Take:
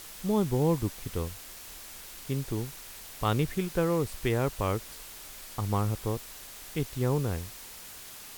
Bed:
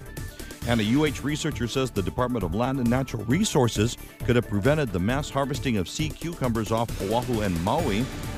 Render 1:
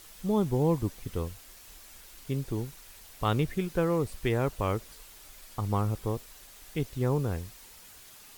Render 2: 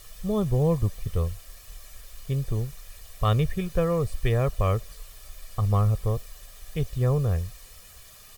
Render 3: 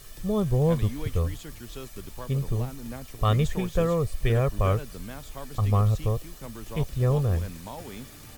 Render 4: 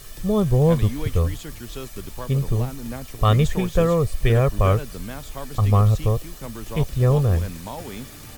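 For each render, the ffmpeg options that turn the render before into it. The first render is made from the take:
-af "afftdn=nr=7:nf=-46"
-af "lowshelf=f=110:g=10,aecho=1:1:1.7:0.64"
-filter_complex "[1:a]volume=0.168[s0];[0:a][s0]amix=inputs=2:normalize=0"
-af "volume=1.88"

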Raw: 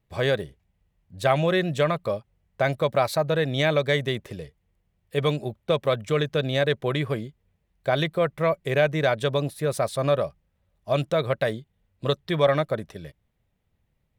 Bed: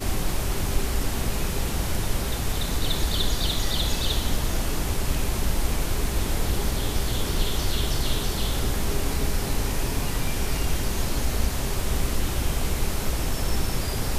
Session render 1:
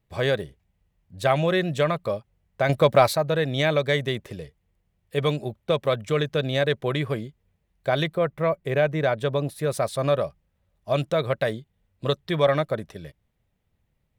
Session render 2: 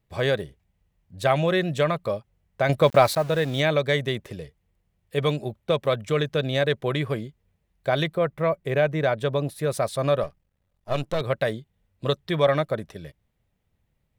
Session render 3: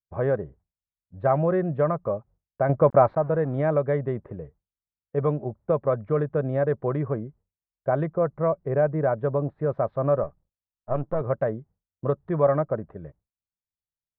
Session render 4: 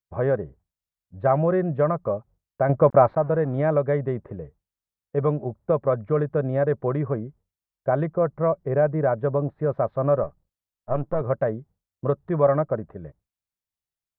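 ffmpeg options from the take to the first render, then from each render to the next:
-filter_complex "[0:a]asettb=1/sr,asplit=3[s0][s1][s2];[s0]atrim=end=2.694[s3];[s1]atrim=start=2.69:end=3.13,asetpts=PTS-STARTPTS,afade=t=in:d=0.004:c=qsin,afade=t=out:st=0.436:d=0.004:c=qsin,acontrast=51[s4];[s2]atrim=start=3.126[s5];[s3][s4]acrossfade=d=0.004:c1=hsin:c2=qsin[s6];[s6][s5]acrossfade=d=0.004:c1=qsin:c2=hsin,asettb=1/sr,asplit=3[s7][s8][s9];[s7]atrim=end=8.154[s10];[s8]atrim=start=8.15:end=9.49,asetpts=PTS-STARTPTS,afade=t=in:d=0.004:c=qsin,afade=t=out:st=1.336:d=0.004:c=qsin,equalizer=f=7200:w=0.34:g=-7[s11];[s9]atrim=start=9.486[s12];[s10][s11]acrossfade=d=0.004:c1=hsin:c2=qsin[s13];[s13][s12]acrossfade=d=0.004:c1=qsin:c2=hsin"
-filter_complex "[0:a]asettb=1/sr,asplit=3[s0][s1][s2];[s0]atrim=end=2.844[s3];[s1]atrim=start=2.84:end=3.6,asetpts=PTS-STARTPTS,afade=t=in:d=0.004:c=qsin,afade=t=out:st=0.756:d=0.004:c=qsin,aeval=exprs='val(0)*gte(abs(val(0)),0.0168)':c=same[s4];[s2]atrim=start=3.596[s5];[s3][s4]acrossfade=d=0.004:c1=hsin:c2=qsin[s6];[s6][s5]acrossfade=d=0.004:c1=qsin:c2=hsin,asettb=1/sr,asplit=3[s7][s8][s9];[s7]atrim=end=10.234[s10];[s8]atrim=start=10.23:end=11.21,asetpts=PTS-STARTPTS,afade=t=in:d=0.004:c=qsin,afade=t=out:st=0.976:d=0.004:c=qsin,aeval=exprs='if(lt(val(0),0),0.251*val(0),val(0))':c=same[s11];[s9]atrim=start=11.206[s12];[s10][s11]acrossfade=d=0.004:c1=hsin:c2=qsin[s13];[s13][s12]acrossfade=d=0.004:c1=qsin:c2=hsin"
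-af "lowpass=f=1300:w=0.5412,lowpass=f=1300:w=1.3066,agate=range=0.0224:threshold=0.00501:ratio=3:detection=peak"
-af "volume=1.19"

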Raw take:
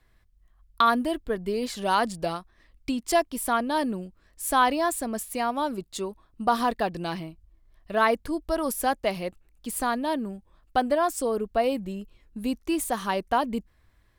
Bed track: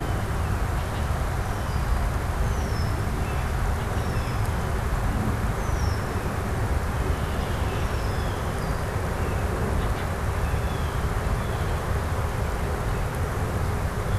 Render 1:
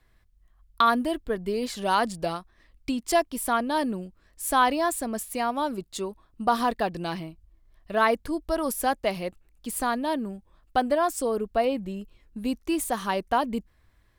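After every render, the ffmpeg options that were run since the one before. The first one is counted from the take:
-filter_complex "[0:a]asettb=1/sr,asplit=3[s0][s1][s2];[s0]atrim=end=11.654[s3];[s1]atrim=start=11.65:end=12.45,asetpts=PTS-STARTPTS,afade=t=in:d=0.004:c=qsin,afade=t=out:st=0.796:d=0.004:c=qsin,acrossover=split=4600[s4][s5];[s5]acompressor=threshold=0.00141:ratio=4:attack=1:release=60[s6];[s4][s6]amix=inputs=2:normalize=0[s7];[s2]atrim=start=12.446[s8];[s3][s7]acrossfade=d=0.004:c1=hsin:c2=qsin[s9];[s9][s8]acrossfade=d=0.004:c1=qsin:c2=hsin"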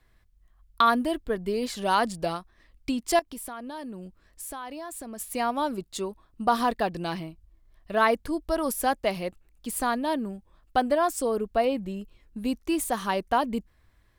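-filter_complex "[0:a]asettb=1/sr,asplit=3[s0][s1][s2];[s0]atrim=end=3.194[s3];[s1]atrim=start=3.19:end=5.2,asetpts=PTS-STARTPTS,afade=t=in:d=0.004:c=qsin,afade=t=out:st=2.006:d=0.004:c=qsin,acompressor=threshold=0.0178:ratio=6:attack=3.2:release=140:knee=1:detection=peak[s4];[s2]atrim=start=5.196[s5];[s3][s4]acrossfade=d=0.004:c1=hsin:c2=qsin[s6];[s6][s5]acrossfade=d=0.004:c1=qsin:c2=hsin"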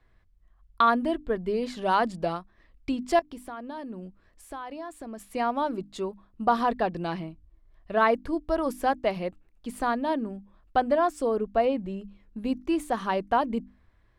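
-af "aemphasis=mode=reproduction:type=75fm,bandreject=f=50:t=h:w=6,bandreject=f=100:t=h:w=6,bandreject=f=150:t=h:w=6,bandreject=f=200:t=h:w=6,bandreject=f=250:t=h:w=6,bandreject=f=300:t=h:w=6"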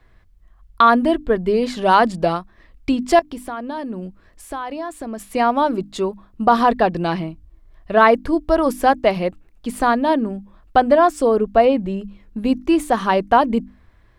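-af "volume=3.16,alimiter=limit=0.794:level=0:latency=1"

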